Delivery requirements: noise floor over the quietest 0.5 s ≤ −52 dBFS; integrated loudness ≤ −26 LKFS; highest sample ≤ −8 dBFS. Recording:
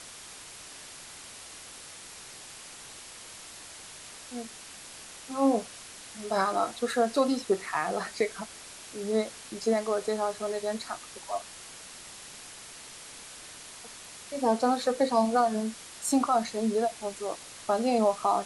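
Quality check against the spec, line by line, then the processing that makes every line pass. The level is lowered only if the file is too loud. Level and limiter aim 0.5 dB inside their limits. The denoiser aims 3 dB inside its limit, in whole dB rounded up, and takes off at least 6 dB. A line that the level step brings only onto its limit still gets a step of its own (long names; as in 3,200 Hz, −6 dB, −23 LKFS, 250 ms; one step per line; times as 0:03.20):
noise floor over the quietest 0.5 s −46 dBFS: out of spec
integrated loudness −29.0 LKFS: in spec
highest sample −12.5 dBFS: in spec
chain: broadband denoise 9 dB, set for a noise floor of −46 dBFS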